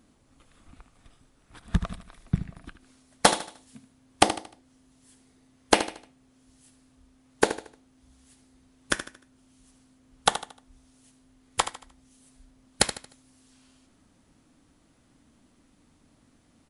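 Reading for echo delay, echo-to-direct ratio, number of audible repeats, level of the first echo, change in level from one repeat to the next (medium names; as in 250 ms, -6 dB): 76 ms, -11.0 dB, 3, -11.5 dB, -9.0 dB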